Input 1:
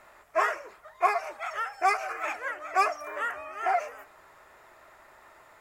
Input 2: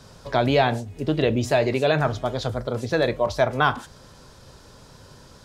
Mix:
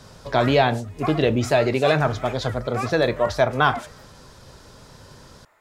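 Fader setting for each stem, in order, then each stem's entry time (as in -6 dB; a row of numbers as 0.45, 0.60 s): -5.5, +1.5 dB; 0.00, 0.00 s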